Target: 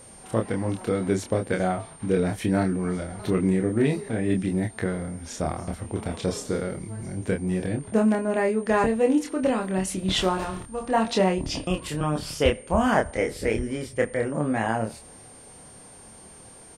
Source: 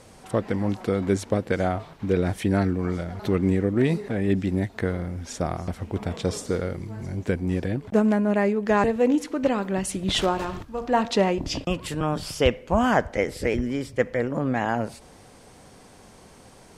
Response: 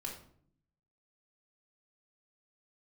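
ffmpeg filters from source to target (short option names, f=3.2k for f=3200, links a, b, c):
-filter_complex "[0:a]asplit=2[a][b];[b]adelay=27,volume=-4dB[c];[a][c]amix=inputs=2:normalize=0,aeval=exprs='val(0)+0.00562*sin(2*PI*9000*n/s)':c=same,volume=-2dB"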